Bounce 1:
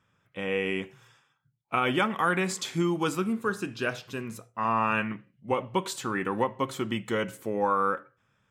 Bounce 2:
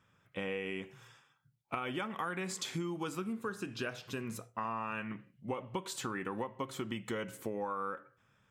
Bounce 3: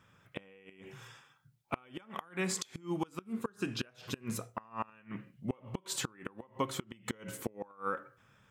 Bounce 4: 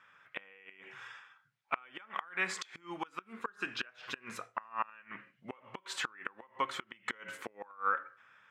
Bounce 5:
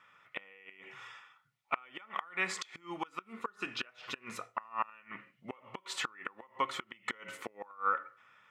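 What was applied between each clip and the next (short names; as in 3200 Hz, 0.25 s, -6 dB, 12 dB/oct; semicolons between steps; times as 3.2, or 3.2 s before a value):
compressor 6:1, threshold -35 dBFS, peak gain reduction 13.5 dB
flipped gate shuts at -27 dBFS, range -26 dB; gain +5.5 dB
band-pass 1700 Hz, Q 1.4; gain +8 dB
Butterworth band-stop 1600 Hz, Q 7.8; gain +1 dB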